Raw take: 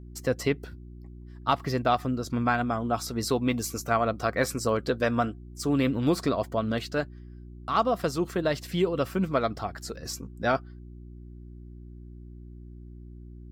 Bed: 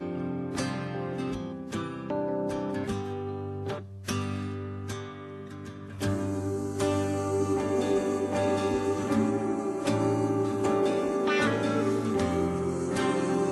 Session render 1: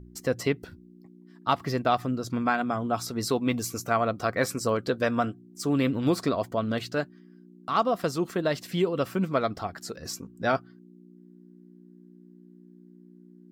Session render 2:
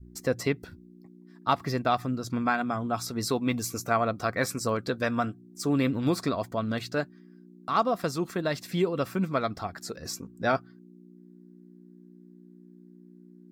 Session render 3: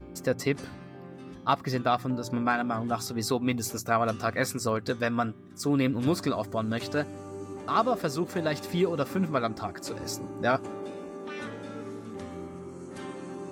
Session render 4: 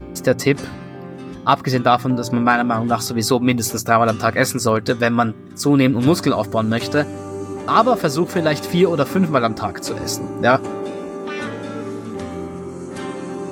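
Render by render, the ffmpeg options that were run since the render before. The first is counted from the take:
ffmpeg -i in.wav -af "bandreject=frequency=60:width_type=h:width=4,bandreject=frequency=120:width_type=h:width=4" out.wav
ffmpeg -i in.wav -af "bandreject=frequency=3000:width=9.1,adynamicequalizer=threshold=0.0141:dfrequency=470:dqfactor=1:tfrequency=470:tqfactor=1:attack=5:release=100:ratio=0.375:range=2.5:mode=cutabove:tftype=bell" out.wav
ffmpeg -i in.wav -i bed.wav -filter_complex "[1:a]volume=-12.5dB[link_01];[0:a][link_01]amix=inputs=2:normalize=0" out.wav
ffmpeg -i in.wav -af "volume=11dB,alimiter=limit=-1dB:level=0:latency=1" out.wav

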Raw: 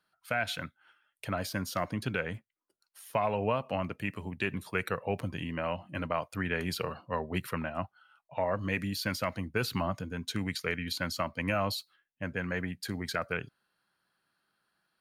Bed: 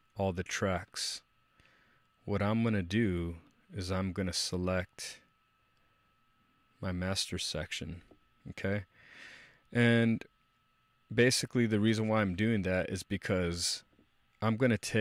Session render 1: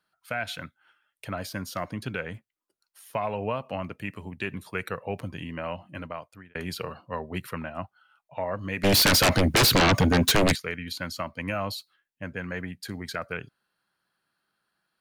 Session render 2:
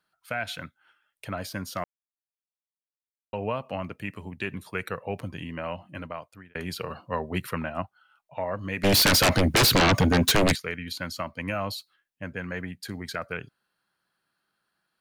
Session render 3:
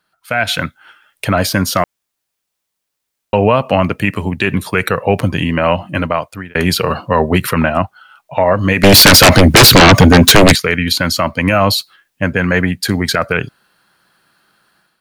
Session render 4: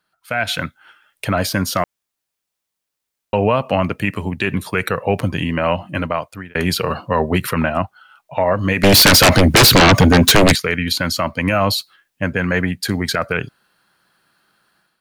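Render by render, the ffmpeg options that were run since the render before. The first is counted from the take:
ffmpeg -i in.wav -filter_complex "[0:a]asplit=3[link_01][link_02][link_03];[link_01]afade=type=out:start_time=8.83:duration=0.02[link_04];[link_02]aeval=exprs='0.168*sin(PI/2*7.94*val(0)/0.168)':channel_layout=same,afade=type=in:start_time=8.83:duration=0.02,afade=type=out:start_time=10.54:duration=0.02[link_05];[link_03]afade=type=in:start_time=10.54:duration=0.02[link_06];[link_04][link_05][link_06]amix=inputs=3:normalize=0,asplit=2[link_07][link_08];[link_07]atrim=end=6.55,asetpts=PTS-STARTPTS,afade=type=out:start_time=5.83:duration=0.72[link_09];[link_08]atrim=start=6.55,asetpts=PTS-STARTPTS,afade=type=in:duration=0.004:curve=hsin[link_10];[link_09][link_10]concat=n=2:v=0:a=1" out.wav
ffmpeg -i in.wav -filter_complex "[0:a]asplit=5[link_01][link_02][link_03][link_04][link_05];[link_01]atrim=end=1.84,asetpts=PTS-STARTPTS,afade=type=out:start_time=1.836:duration=0.004:curve=hsin[link_06];[link_02]atrim=start=1.84:end=3.33,asetpts=PTS-STARTPTS,volume=0[link_07];[link_03]atrim=start=3.33:end=6.902,asetpts=PTS-STARTPTS,afade=type=in:duration=0.004:curve=hsin[link_08];[link_04]atrim=start=6.898:end=7.822,asetpts=PTS-STARTPTS,volume=3.5dB[link_09];[link_05]atrim=start=7.818[link_10];[link_06][link_07][link_08]concat=n=3:v=0:a=1[link_11];[link_11][link_09]acrossfade=duration=0.004:curve1=hsin:curve2=hsin[link_12];[link_12][link_10]acrossfade=duration=0.004:curve1=hsin:curve2=hsin" out.wav
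ffmpeg -i in.wav -af "dynaudnorm=framelen=290:gausssize=3:maxgain=10.5dB,alimiter=level_in=10dB:limit=-1dB:release=50:level=0:latency=1" out.wav
ffmpeg -i in.wav -af "volume=-4.5dB" out.wav

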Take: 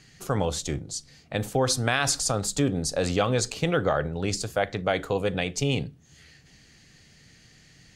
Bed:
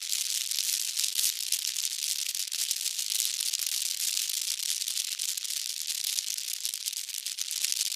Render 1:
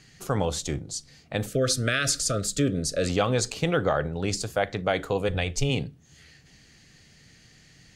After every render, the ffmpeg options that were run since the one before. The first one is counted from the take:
ffmpeg -i in.wav -filter_complex "[0:a]asettb=1/sr,asplit=3[link_01][link_02][link_03];[link_01]atrim=end=1.464[link_04];[link_02]atrim=start=1.46:end=3.09,asetpts=PTS-STARTPTS,afade=type=in:duration=0.004:curve=qsin,afade=type=out:start_time=1.626:duration=0.004:curve=qsin,asuperstop=centerf=890:order=20:qfactor=1.8[link_05];[link_03]atrim=start=3.086[link_06];[link_04][link_05]acrossfade=duration=0.004:curve1=hsin:curve2=qsin[link_07];[link_07][link_06]acrossfade=duration=0.004:curve1=qsin:curve2=hsin,asplit=3[link_08][link_09][link_10];[link_08]afade=type=out:start_time=5.28:duration=0.02[link_11];[link_09]asubboost=boost=9:cutoff=67,afade=type=in:start_time=5.28:duration=0.02,afade=type=out:start_time=5.69:duration=0.02[link_12];[link_10]afade=type=in:start_time=5.69:duration=0.02[link_13];[link_11][link_12][link_13]amix=inputs=3:normalize=0" out.wav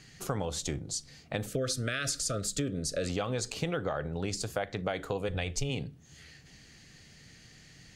ffmpeg -i in.wav -af "acompressor=threshold=-30dB:ratio=4" out.wav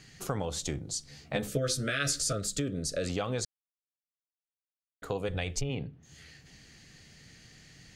ffmpeg -i in.wav -filter_complex "[0:a]asettb=1/sr,asplit=3[link_01][link_02][link_03];[link_01]atrim=end=1.084[link_04];[link_02]atrim=start=1.08:end=2.33,asetpts=PTS-STARTPTS,afade=type=in:duration=0.004:curve=qsin,afade=type=out:start_time=1.246:duration=0.004:curve=qsin,asplit=2[link_05][link_06];[link_06]adelay=14,volume=-2dB[link_07];[link_05][link_07]amix=inputs=2:normalize=0,atrim=end_sample=55125[link_08];[link_03]atrim=start=2.326[link_09];[link_04][link_08]acrossfade=duration=0.004:curve1=hsin:curve2=qsin[link_10];[link_10][link_09]acrossfade=duration=0.004:curve1=qsin:curve2=hsin,asettb=1/sr,asplit=3[link_11][link_12][link_13];[link_11]atrim=end=5.614[link_14];[link_12]atrim=start=5.61:end=6.03,asetpts=PTS-STARTPTS,afade=type=in:duration=0.004:curve=qsin,afade=type=out:start_time=0.416:duration=0.004:curve=qsin,lowpass=2500[link_15];[link_13]atrim=start=6.026[link_16];[link_14][link_15]acrossfade=duration=0.004:curve1=hsin:curve2=qsin[link_17];[link_17][link_16]acrossfade=duration=0.004:curve1=qsin:curve2=hsin,asplit=3[link_18][link_19][link_20];[link_18]atrim=end=3.45,asetpts=PTS-STARTPTS,afade=type=out:start_time=3.446:duration=0.004:curve=hsin[link_21];[link_19]atrim=start=3.45:end=5.02,asetpts=PTS-STARTPTS,volume=0[link_22];[link_20]atrim=start=5.02,asetpts=PTS-STARTPTS,afade=type=in:duration=0.004:curve=hsin[link_23];[link_21][link_22][link_23]concat=n=3:v=0:a=1" out.wav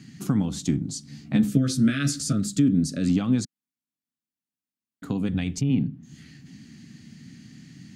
ffmpeg -i in.wav -af "highpass=150,lowshelf=frequency=350:width_type=q:width=3:gain=12" out.wav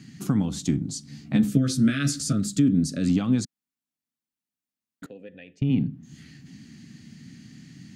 ffmpeg -i in.wav -filter_complex "[0:a]asettb=1/sr,asplit=3[link_01][link_02][link_03];[link_01]atrim=end=5.064[link_04];[link_02]atrim=start=5.06:end=5.62,asetpts=PTS-STARTPTS,afade=type=in:duration=0.004:curve=qsin,afade=type=out:start_time=0.556:duration=0.004:curve=qsin,asplit=3[link_05][link_06][link_07];[link_05]bandpass=frequency=530:width_type=q:width=8,volume=0dB[link_08];[link_06]bandpass=frequency=1840:width_type=q:width=8,volume=-6dB[link_09];[link_07]bandpass=frequency=2480:width_type=q:width=8,volume=-9dB[link_10];[link_08][link_09][link_10]amix=inputs=3:normalize=0[link_11];[link_03]atrim=start=5.616[link_12];[link_04][link_11]acrossfade=duration=0.004:curve1=hsin:curve2=qsin[link_13];[link_13][link_12]acrossfade=duration=0.004:curve1=qsin:curve2=hsin" out.wav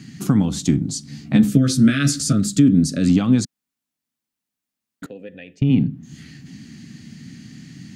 ffmpeg -i in.wav -af "volume=6.5dB,alimiter=limit=-3dB:level=0:latency=1" out.wav

